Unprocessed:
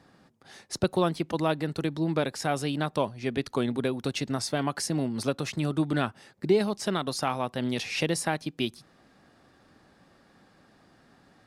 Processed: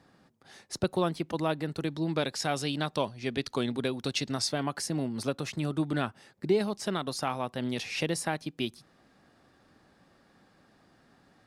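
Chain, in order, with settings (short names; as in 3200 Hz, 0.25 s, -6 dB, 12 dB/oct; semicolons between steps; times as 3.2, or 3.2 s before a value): 1.86–4.53 dynamic EQ 4500 Hz, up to +7 dB, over -49 dBFS, Q 0.76; gain -3 dB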